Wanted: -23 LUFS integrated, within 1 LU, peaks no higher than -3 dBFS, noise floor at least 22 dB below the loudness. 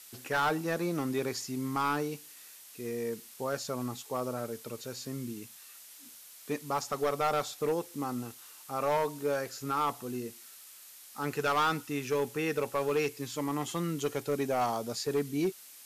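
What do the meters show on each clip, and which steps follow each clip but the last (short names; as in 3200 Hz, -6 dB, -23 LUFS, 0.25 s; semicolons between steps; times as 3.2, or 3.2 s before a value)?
clipped 1.1%; flat tops at -23.0 dBFS; noise floor -52 dBFS; noise floor target -55 dBFS; loudness -33.0 LUFS; peak -23.0 dBFS; loudness target -23.0 LUFS
-> clip repair -23 dBFS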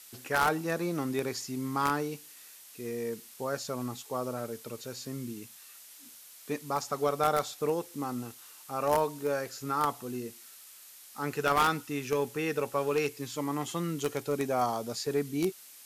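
clipped 0.0%; noise floor -52 dBFS; noise floor target -54 dBFS
-> denoiser 6 dB, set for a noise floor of -52 dBFS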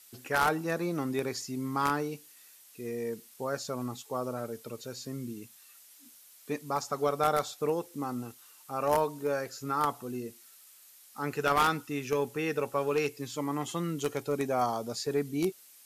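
noise floor -56 dBFS; loudness -32.0 LUFS; peak -14.0 dBFS; loudness target -23.0 LUFS
-> gain +9 dB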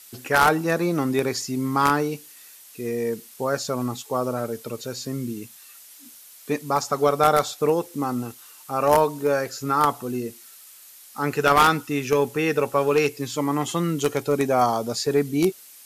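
loudness -23.0 LUFS; peak -5.0 dBFS; noise floor -47 dBFS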